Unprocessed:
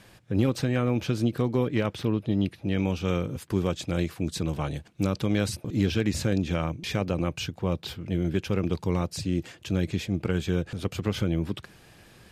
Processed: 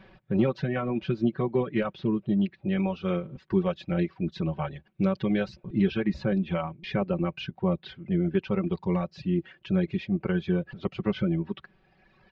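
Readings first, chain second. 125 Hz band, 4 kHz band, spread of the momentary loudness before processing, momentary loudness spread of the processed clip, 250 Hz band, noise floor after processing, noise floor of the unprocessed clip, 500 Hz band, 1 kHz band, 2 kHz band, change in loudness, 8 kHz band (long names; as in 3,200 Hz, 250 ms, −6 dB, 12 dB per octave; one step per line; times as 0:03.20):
−2.5 dB, −6.5 dB, 5 LU, 5 LU, +1.0 dB, −66 dBFS, −56 dBFS, +0.5 dB, +0.5 dB, −1.5 dB, −0.5 dB, below −25 dB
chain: reverb reduction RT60 1.9 s
Gaussian smoothing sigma 2.7 samples
comb filter 5.3 ms, depth 78%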